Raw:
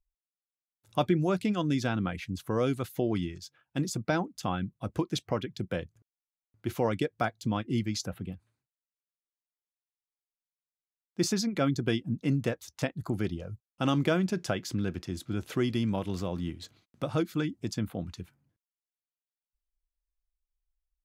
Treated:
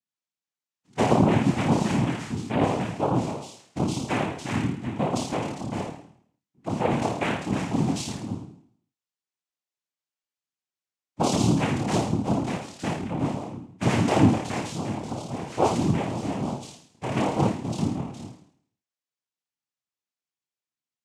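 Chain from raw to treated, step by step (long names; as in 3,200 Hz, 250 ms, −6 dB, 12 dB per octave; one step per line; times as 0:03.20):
flutter between parallel walls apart 4.6 metres, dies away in 0.61 s
harmonic and percussive parts rebalanced percussive −15 dB
cochlear-implant simulation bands 4
level +4 dB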